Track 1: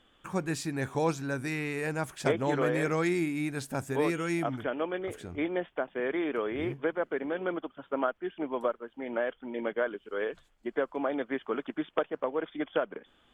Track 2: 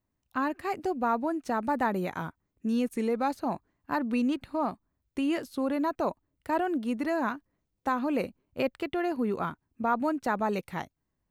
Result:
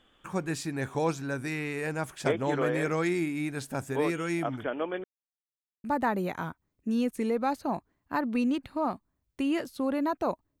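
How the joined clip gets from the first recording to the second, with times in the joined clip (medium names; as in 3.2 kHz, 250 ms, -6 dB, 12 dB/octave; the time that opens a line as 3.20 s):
track 1
5.04–5.84 s: mute
5.84 s: go over to track 2 from 1.62 s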